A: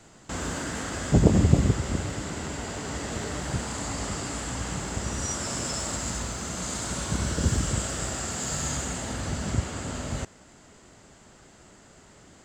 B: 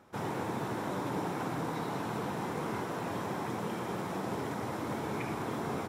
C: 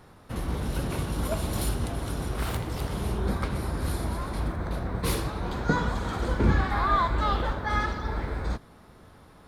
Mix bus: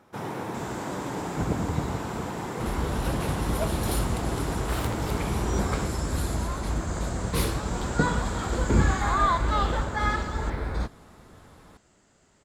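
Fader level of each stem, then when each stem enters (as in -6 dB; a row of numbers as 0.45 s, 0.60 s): -10.0 dB, +2.0 dB, +1.0 dB; 0.25 s, 0.00 s, 2.30 s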